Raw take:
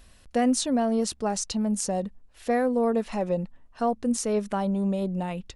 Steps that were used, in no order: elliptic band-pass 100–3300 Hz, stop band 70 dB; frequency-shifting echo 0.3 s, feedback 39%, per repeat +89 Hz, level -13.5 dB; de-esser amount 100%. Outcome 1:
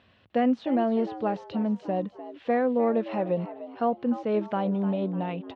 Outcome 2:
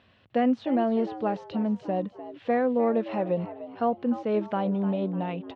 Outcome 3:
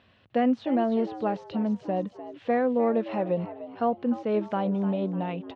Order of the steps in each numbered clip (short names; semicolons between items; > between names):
de-esser > elliptic band-pass > frequency-shifting echo; de-esser > frequency-shifting echo > elliptic band-pass; frequency-shifting echo > de-esser > elliptic band-pass